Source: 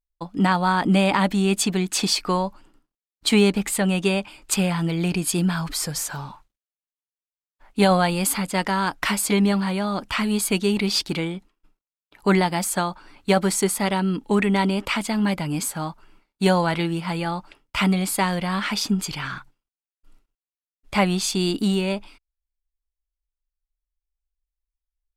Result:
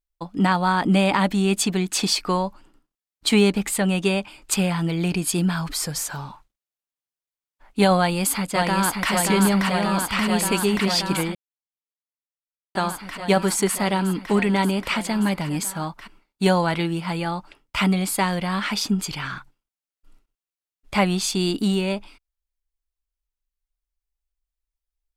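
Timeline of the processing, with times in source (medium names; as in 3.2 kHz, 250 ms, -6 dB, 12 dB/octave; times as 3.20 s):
7.97–9.11 s: echo throw 580 ms, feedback 85%, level -3.5 dB
11.35–12.75 s: mute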